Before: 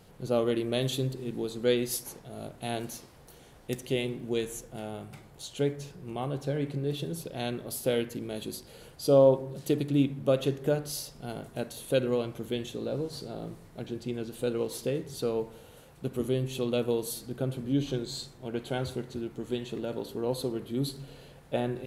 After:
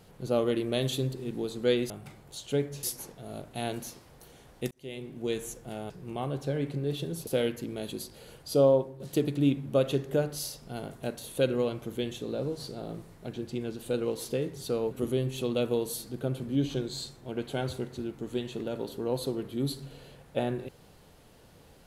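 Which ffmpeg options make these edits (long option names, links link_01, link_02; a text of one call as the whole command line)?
ffmpeg -i in.wav -filter_complex "[0:a]asplit=8[link_01][link_02][link_03][link_04][link_05][link_06][link_07][link_08];[link_01]atrim=end=1.902[link_09];[link_02]atrim=start=4.968:end=5.902[link_10];[link_03]atrim=start=1.898:end=3.78,asetpts=PTS-STARTPTS,afade=type=out:start_time=1.878:duration=0.004:curve=hsin[link_11];[link_04]atrim=start=3.78:end=4.972,asetpts=PTS-STARTPTS,afade=type=in:duration=0.68[link_12];[link_05]atrim=start=5.898:end=7.272[link_13];[link_06]atrim=start=7.798:end=9.53,asetpts=PTS-STARTPTS,afade=type=out:start_time=1.272:duration=0.46:silence=0.334965[link_14];[link_07]atrim=start=9.53:end=15.442,asetpts=PTS-STARTPTS,afade=type=in:duration=0.004:curve=hsin:silence=0.334965[link_15];[link_08]atrim=start=16.078[link_16];[link_09][link_10]acrossfade=duration=0.004:curve1=hsin:curve2=hsin[link_17];[link_11][link_12]concat=n=2:v=0:a=1[link_18];[link_17][link_18]acrossfade=duration=0.004:curve1=hsin:curve2=hsin[link_19];[link_19][link_13]acrossfade=duration=0.004:curve1=hsin:curve2=hsin[link_20];[link_14][link_15]concat=n=2:v=0:a=1[link_21];[link_20][link_21]acrossfade=duration=0.004:curve1=hsin:curve2=hsin[link_22];[link_22][link_16]acrossfade=duration=0.004:curve1=hsin:curve2=hsin" out.wav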